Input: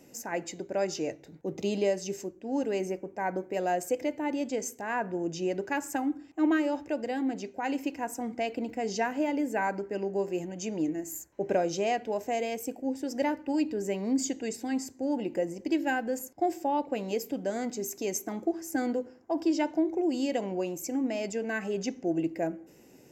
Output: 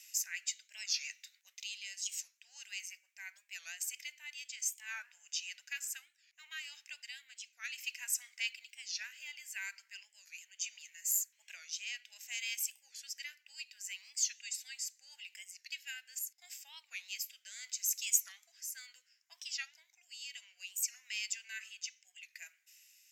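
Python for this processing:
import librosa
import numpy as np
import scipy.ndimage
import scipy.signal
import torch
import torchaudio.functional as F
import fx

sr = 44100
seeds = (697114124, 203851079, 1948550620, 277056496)

y = fx.rotary(x, sr, hz=0.7)
y = fx.rider(y, sr, range_db=10, speed_s=0.5)
y = scipy.signal.sosfilt(scipy.signal.cheby2(4, 80, 400.0, 'highpass', fs=sr, output='sos'), y)
y = fx.record_warp(y, sr, rpm=45.0, depth_cents=160.0)
y = F.gain(torch.from_numpy(y), 5.5).numpy()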